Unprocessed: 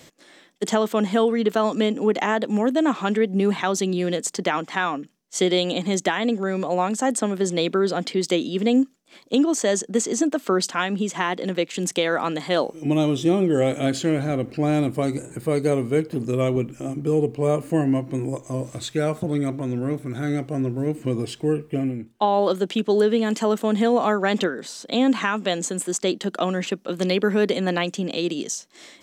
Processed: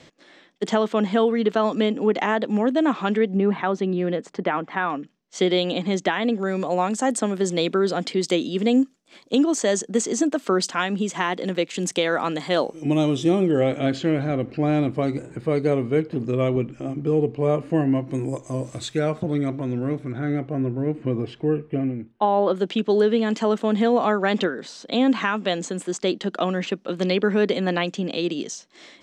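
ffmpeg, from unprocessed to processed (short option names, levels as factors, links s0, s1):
-af "asetnsamples=n=441:p=0,asendcmd='3.37 lowpass f 2000;4.9 lowpass f 4300;6.39 lowpass f 9200;13.51 lowpass f 3900;18.08 lowpass f 9300;18.99 lowpass f 4700;20.12 lowpass f 2400;22.56 lowpass f 5100',lowpass=4700"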